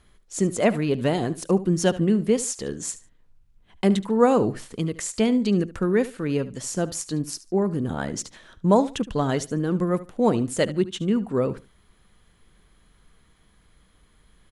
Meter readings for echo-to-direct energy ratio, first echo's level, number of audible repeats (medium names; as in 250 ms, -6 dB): -16.5 dB, -16.5 dB, 2